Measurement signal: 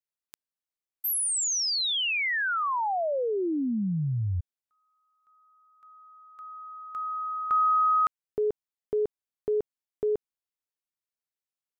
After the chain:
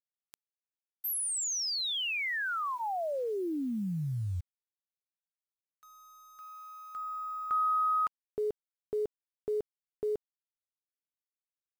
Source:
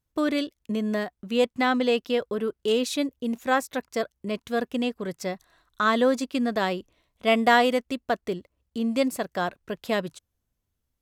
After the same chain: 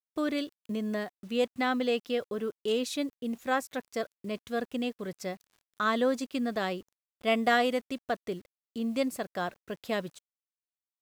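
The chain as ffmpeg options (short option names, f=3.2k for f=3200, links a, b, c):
-af "bandreject=f=960:w=16,acrusher=bits=8:mix=0:aa=0.000001,volume=-5.5dB"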